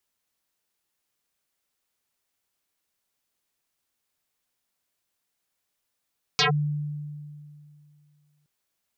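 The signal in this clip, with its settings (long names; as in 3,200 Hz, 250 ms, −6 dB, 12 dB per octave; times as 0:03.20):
two-operator FM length 2.07 s, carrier 148 Hz, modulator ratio 4, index 10, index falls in 0.12 s linear, decay 2.47 s, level −17 dB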